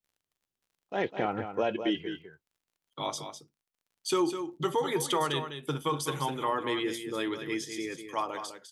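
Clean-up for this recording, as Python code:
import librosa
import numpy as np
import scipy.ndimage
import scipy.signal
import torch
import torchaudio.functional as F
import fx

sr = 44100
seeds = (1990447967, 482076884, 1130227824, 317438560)

y = fx.fix_declick_ar(x, sr, threshold=6.5)
y = fx.fix_echo_inverse(y, sr, delay_ms=203, level_db=-9.0)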